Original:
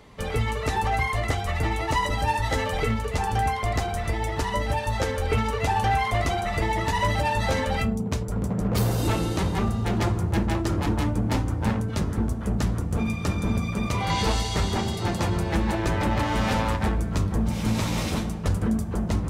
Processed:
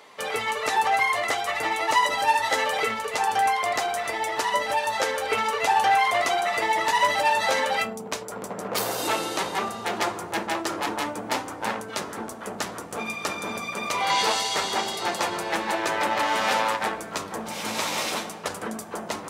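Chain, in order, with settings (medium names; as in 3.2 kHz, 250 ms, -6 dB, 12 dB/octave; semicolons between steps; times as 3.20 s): high-pass 560 Hz 12 dB/octave; trim +5 dB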